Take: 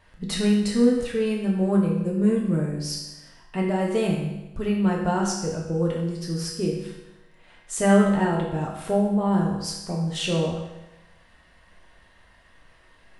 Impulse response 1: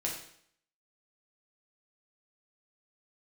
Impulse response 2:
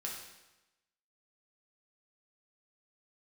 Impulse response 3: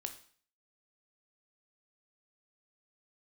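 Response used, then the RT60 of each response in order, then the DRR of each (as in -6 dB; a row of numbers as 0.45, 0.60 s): 2; 0.65, 1.0, 0.50 s; -2.5, -3.0, 6.5 dB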